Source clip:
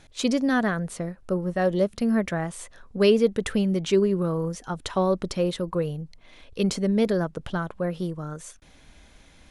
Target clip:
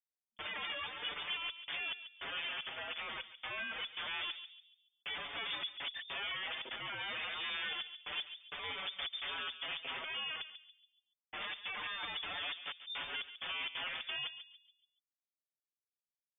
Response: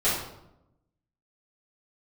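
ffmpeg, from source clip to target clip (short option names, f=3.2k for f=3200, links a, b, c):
-filter_complex "[0:a]bandreject=f=530:w=12,afftdn=nr=21:nf=-47,afftfilt=real='re*gte(hypot(re,im),0.2)':imag='im*gte(hypot(re,im),0.2)':win_size=1024:overlap=0.75,agate=range=-53dB:threshold=-41dB:ratio=16:detection=peak,highshelf=f=1.6k:t=q:w=1.5:g=12.5,acompressor=threshold=-31dB:ratio=4,atempo=0.58,aeval=exprs='(mod(79.4*val(0)+1,2)-1)/79.4':c=same,asplit=2[a][b];[b]adelay=141,lowpass=f=900:p=1,volume=-8dB,asplit=2[c][d];[d]adelay=141,lowpass=f=900:p=1,volume=0.41,asplit=2[e][f];[f]adelay=141,lowpass=f=900:p=1,volume=0.41,asplit=2[g][h];[h]adelay=141,lowpass=f=900:p=1,volume=0.41,asplit=2[i][j];[j]adelay=141,lowpass=f=900:p=1,volume=0.41[k];[c][e][g][i][k]amix=inputs=5:normalize=0[l];[a][l]amix=inputs=2:normalize=0,lowpass=f=3.1k:t=q:w=0.5098,lowpass=f=3.1k:t=q:w=0.6013,lowpass=f=3.1k:t=q:w=0.9,lowpass=f=3.1k:t=q:w=2.563,afreqshift=-3600,asplit=2[m][n];[n]adelay=6,afreqshift=-0.27[o];[m][o]amix=inputs=2:normalize=1,volume=6dB"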